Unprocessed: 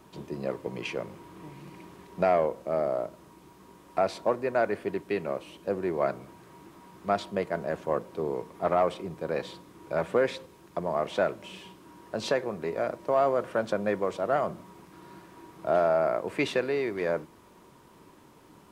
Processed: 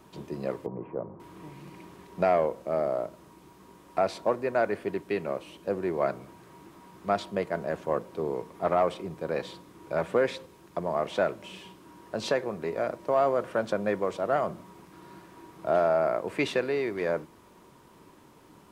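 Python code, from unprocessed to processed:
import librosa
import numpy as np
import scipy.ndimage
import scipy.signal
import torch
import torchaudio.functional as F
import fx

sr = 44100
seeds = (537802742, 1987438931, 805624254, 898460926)

y = fx.lowpass(x, sr, hz=1100.0, slope=24, at=(0.66, 1.2))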